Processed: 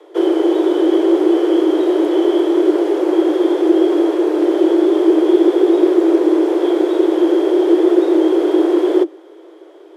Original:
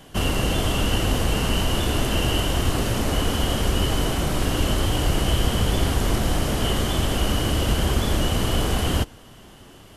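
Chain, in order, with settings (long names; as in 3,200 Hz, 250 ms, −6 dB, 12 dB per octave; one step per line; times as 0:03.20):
high-pass filter 57 Hz 6 dB per octave
RIAA equalisation playback
frequency shifter +290 Hz
level −3 dB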